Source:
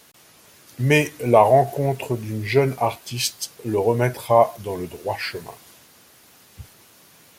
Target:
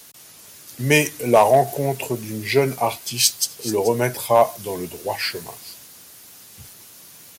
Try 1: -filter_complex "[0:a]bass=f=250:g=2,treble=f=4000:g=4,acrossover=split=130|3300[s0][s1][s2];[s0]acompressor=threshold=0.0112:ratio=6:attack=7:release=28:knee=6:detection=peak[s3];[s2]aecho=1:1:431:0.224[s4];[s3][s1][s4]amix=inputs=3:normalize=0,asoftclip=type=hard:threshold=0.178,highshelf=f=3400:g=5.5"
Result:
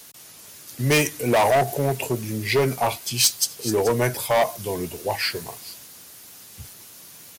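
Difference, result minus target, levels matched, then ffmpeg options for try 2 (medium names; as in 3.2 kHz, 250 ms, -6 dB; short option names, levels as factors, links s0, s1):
hard clipper: distortion +17 dB; compression: peak gain reduction -9 dB
-filter_complex "[0:a]bass=f=250:g=2,treble=f=4000:g=4,acrossover=split=130|3300[s0][s1][s2];[s0]acompressor=threshold=0.00316:ratio=6:attack=7:release=28:knee=6:detection=peak[s3];[s2]aecho=1:1:431:0.224[s4];[s3][s1][s4]amix=inputs=3:normalize=0,asoftclip=type=hard:threshold=0.562,highshelf=f=3400:g=5.5"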